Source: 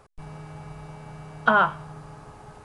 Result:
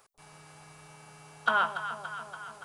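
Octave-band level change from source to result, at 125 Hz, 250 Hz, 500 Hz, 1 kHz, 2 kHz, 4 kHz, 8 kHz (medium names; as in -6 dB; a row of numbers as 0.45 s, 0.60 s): -15.5 dB, -15.5 dB, -10.0 dB, -6.5 dB, -5.0 dB, -0.5 dB, no reading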